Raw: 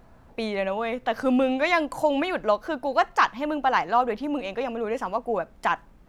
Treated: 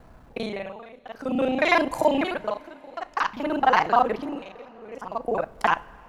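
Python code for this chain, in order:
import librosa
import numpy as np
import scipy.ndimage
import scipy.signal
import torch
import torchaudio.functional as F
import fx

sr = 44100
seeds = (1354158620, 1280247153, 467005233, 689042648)

y = fx.local_reverse(x, sr, ms=33.0)
y = y * (1.0 - 0.91 / 2.0 + 0.91 / 2.0 * np.cos(2.0 * np.pi * 0.53 * (np.arange(len(y)) / sr)))
y = fx.rev_double_slope(y, sr, seeds[0], early_s=0.28, late_s=4.1, knee_db=-18, drr_db=15.0)
y = F.gain(torch.from_numpy(y), 3.5).numpy()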